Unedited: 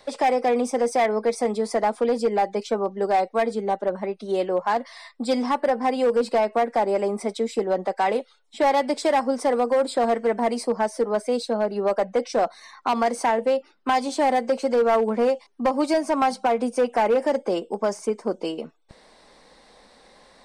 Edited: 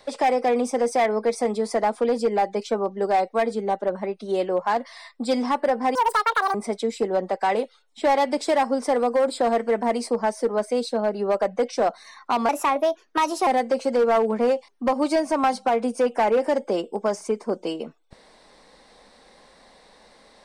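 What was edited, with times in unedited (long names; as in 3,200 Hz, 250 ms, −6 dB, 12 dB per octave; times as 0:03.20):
0:05.95–0:07.11: play speed 195%
0:13.05–0:14.25: play speed 122%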